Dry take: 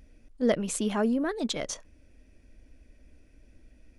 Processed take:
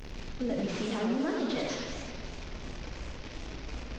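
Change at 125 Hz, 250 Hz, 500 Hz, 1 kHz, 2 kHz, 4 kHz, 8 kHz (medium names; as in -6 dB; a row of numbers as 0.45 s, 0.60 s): +2.0 dB, -2.5 dB, -4.0 dB, -1.5 dB, -0.5 dB, -1.0 dB, -9.5 dB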